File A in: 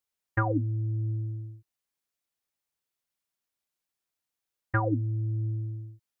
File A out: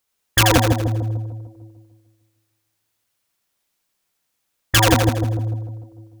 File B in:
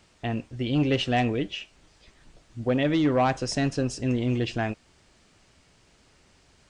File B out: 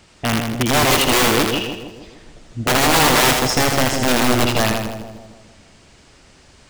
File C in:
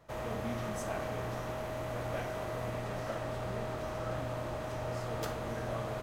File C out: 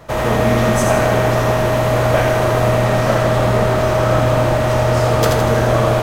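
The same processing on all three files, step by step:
integer overflow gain 20 dB; two-band feedback delay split 800 Hz, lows 149 ms, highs 81 ms, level -4 dB; peak normalisation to -1.5 dBFS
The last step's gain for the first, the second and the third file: +12.0 dB, +9.0 dB, +20.5 dB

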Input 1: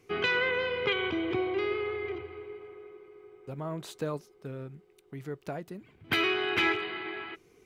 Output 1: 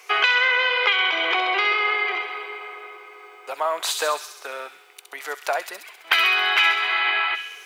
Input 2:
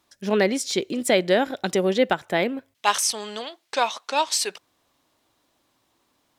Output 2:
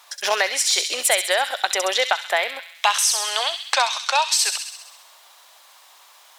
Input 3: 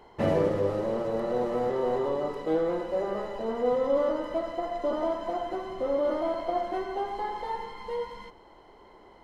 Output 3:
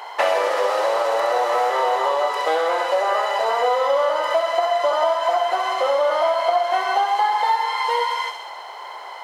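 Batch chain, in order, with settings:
high-pass 710 Hz 24 dB/octave; compression 4:1, threshold -39 dBFS; on a send: feedback echo behind a high-pass 66 ms, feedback 64%, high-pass 2.8 kHz, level -4.5 dB; on the sum: normalise loudness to -20 LUFS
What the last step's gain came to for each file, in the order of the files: +20.5 dB, +19.0 dB, +22.0 dB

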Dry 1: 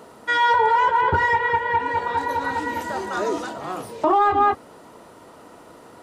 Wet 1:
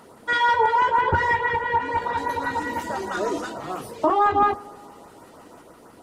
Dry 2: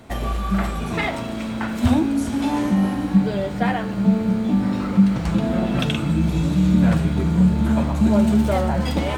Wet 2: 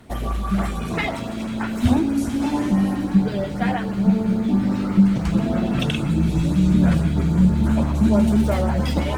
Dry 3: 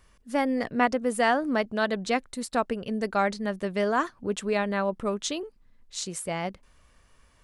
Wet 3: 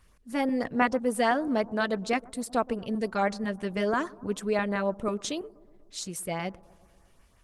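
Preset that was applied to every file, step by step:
LFO notch saw up 6.1 Hz 350–4700 Hz; bucket-brigade echo 122 ms, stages 1024, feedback 67%, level -22 dB; Opus 20 kbps 48 kHz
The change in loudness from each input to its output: -1.5 LU, 0.0 LU, -1.5 LU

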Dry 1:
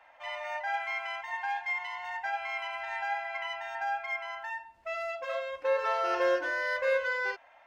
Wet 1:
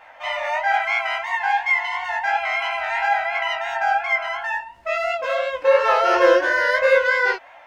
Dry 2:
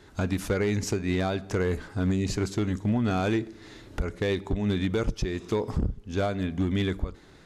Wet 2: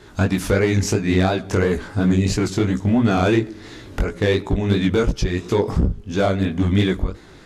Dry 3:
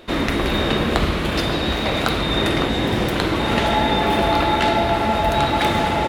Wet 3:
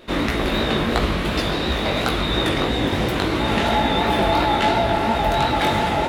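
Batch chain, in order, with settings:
chorus 2.9 Hz, delay 16 ms, depth 6.2 ms; vibrato 5.5 Hz 20 cents; normalise loudness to -20 LUFS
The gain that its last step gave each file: +15.5 dB, +11.5 dB, +2.0 dB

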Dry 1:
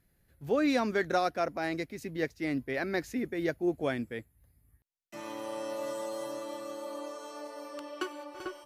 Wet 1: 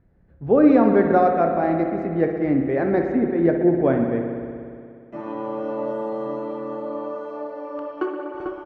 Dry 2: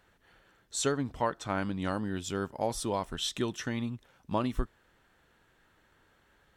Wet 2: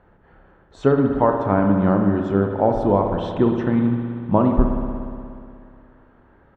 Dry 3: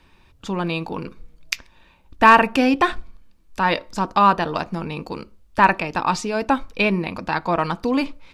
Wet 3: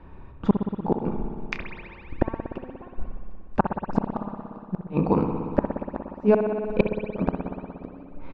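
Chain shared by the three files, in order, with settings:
dynamic bell 190 Hz, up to +3 dB, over -39 dBFS, Q 2.1; low-pass 1 kHz 12 dB/octave; doubling 30 ms -12 dB; inverted gate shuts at -15 dBFS, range -38 dB; spring tank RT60 2.4 s, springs 59 ms, chirp 25 ms, DRR 3.5 dB; peak normalisation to -3 dBFS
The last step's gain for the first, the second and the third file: +11.0 dB, +13.0 dB, +9.0 dB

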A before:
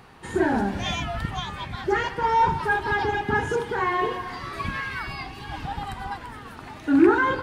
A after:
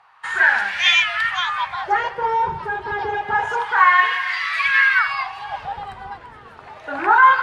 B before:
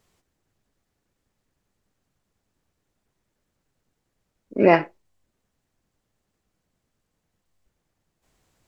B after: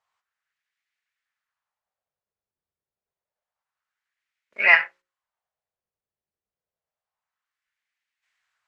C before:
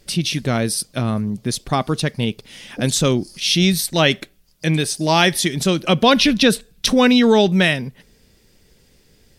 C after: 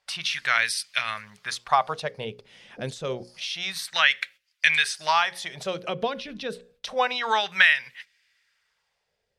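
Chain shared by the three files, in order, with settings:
gate -44 dBFS, range -12 dB; amplifier tone stack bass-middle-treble 10-0-10; hum notches 60/120/180/240/300/360/420/480/540 Hz; compression 6:1, threshold -25 dBFS; wah-wah 0.28 Hz 340–2100 Hz, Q 2.1; peak normalisation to -2 dBFS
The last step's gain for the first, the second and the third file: +23.5 dB, +19.5 dB, +16.0 dB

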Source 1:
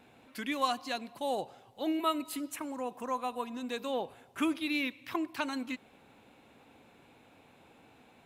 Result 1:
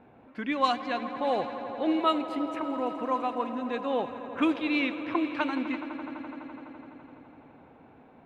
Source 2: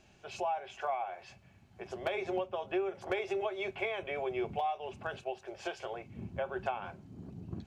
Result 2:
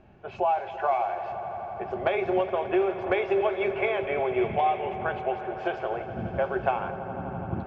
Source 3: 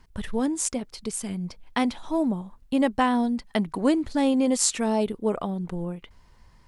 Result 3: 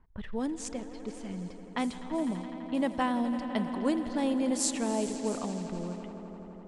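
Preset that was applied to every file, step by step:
echo with a slow build-up 84 ms, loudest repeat 5, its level -16 dB; level-controlled noise filter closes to 1.3 kHz, open at -18.5 dBFS; peak normalisation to -12 dBFS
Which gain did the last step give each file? +5.0 dB, +9.5 dB, -7.5 dB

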